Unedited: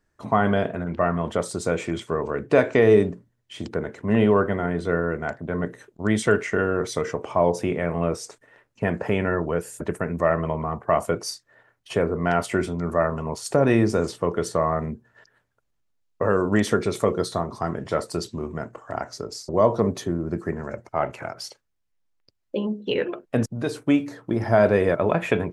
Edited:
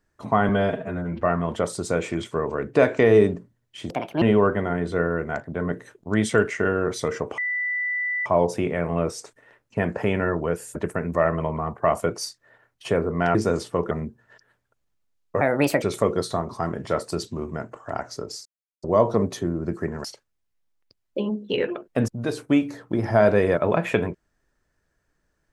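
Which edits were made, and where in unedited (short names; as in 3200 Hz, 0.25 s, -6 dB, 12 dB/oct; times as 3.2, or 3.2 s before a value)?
0.49–0.97 stretch 1.5×
3.66–4.15 speed 154%
7.31 add tone 1980 Hz -23 dBFS 0.88 s
12.4–13.83 cut
14.39–14.77 cut
16.27–16.84 speed 137%
19.47 insert silence 0.37 s
20.69–21.42 cut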